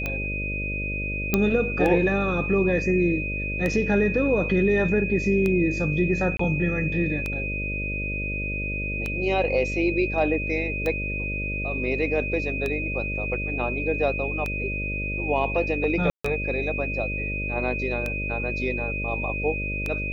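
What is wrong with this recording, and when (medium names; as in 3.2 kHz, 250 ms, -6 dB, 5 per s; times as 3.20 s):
buzz 50 Hz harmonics 12 -31 dBFS
tick 33 1/3 rpm -14 dBFS
whine 2.5 kHz -29 dBFS
1.34 s: pop -6 dBFS
6.37–6.39 s: dropout 24 ms
16.10–16.25 s: dropout 145 ms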